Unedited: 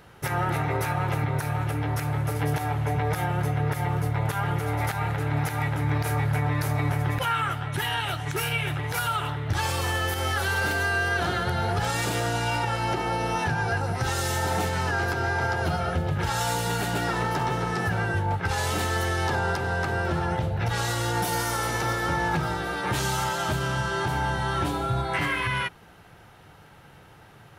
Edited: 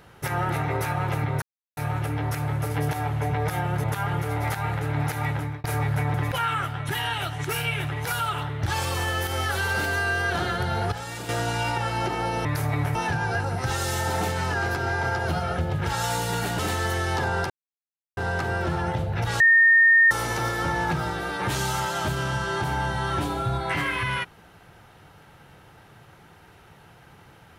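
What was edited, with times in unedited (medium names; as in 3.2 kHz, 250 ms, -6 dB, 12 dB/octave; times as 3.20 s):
1.42 s: insert silence 0.35 s
3.49–4.21 s: delete
5.73–6.01 s: fade out
6.51–7.01 s: move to 13.32 s
11.79–12.16 s: gain -8 dB
16.96–18.70 s: delete
19.61 s: insert silence 0.67 s
20.84–21.55 s: bleep 1.83 kHz -12.5 dBFS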